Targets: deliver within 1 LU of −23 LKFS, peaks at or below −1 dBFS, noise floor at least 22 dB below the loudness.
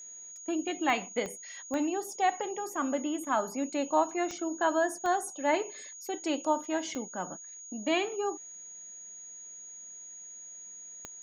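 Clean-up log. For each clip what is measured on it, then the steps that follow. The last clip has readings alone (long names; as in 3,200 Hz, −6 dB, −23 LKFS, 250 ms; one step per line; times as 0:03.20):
number of clicks 7; interfering tone 6,700 Hz; level of the tone −44 dBFS; integrated loudness −31.5 LKFS; sample peak −13.5 dBFS; target loudness −23.0 LKFS
→ click removal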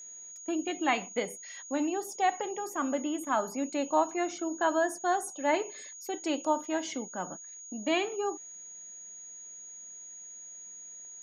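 number of clicks 0; interfering tone 6,700 Hz; level of the tone −44 dBFS
→ notch filter 6,700 Hz, Q 30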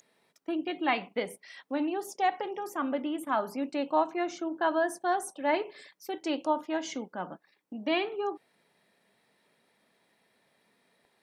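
interfering tone none found; integrated loudness −31.5 LKFS; sample peak −13.5 dBFS; target loudness −23.0 LKFS
→ level +8.5 dB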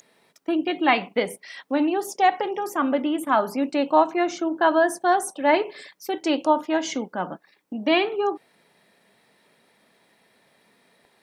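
integrated loudness −23.0 LKFS; sample peak −5.0 dBFS; background noise floor −63 dBFS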